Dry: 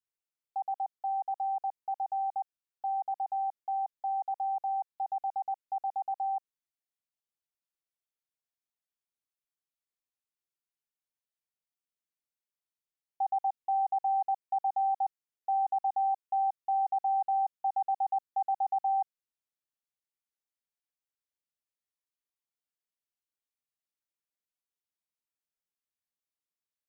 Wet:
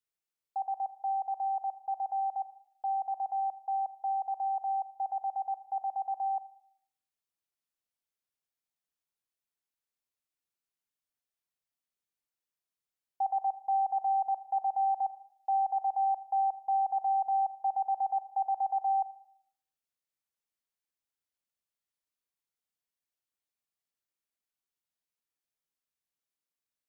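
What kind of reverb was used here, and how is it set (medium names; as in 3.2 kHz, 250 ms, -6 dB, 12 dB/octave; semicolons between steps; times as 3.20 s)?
Schroeder reverb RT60 0.63 s, combs from 33 ms, DRR 13 dB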